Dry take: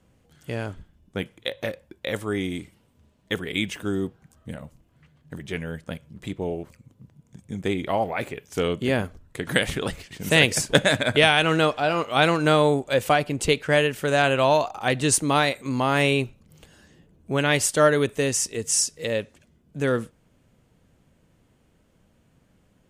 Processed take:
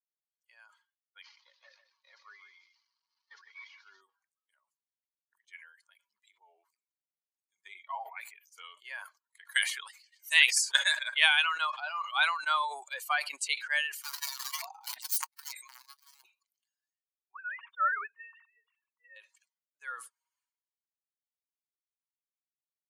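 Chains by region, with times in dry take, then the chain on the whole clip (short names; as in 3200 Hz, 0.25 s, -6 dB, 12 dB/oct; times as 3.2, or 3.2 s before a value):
1.22–4.01 delta modulation 32 kbps, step -39.5 dBFS + echo 0.149 s -5.5 dB
13.95–16.25 notch 1200 Hz, Q 5.5 + wrapped overs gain 19 dB + core saturation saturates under 240 Hz
17.31–19.16 sine-wave speech + band-pass 1200 Hz, Q 1.4
whole clip: per-bin expansion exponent 2; steep high-pass 950 Hz 36 dB/oct; sustainer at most 82 dB/s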